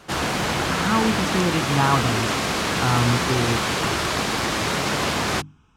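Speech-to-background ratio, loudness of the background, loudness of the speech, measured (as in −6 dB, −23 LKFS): −1.5 dB, −22.5 LKFS, −24.0 LKFS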